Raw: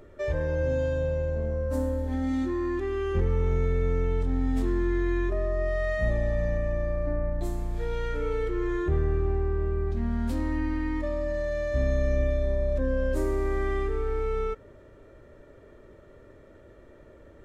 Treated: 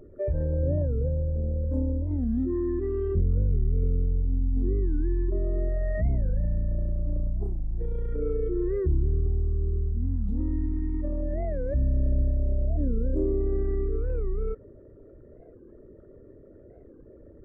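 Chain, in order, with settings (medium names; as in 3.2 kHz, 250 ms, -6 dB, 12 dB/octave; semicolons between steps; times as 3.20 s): resonances exaggerated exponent 2; warped record 45 rpm, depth 250 cents; trim +1.5 dB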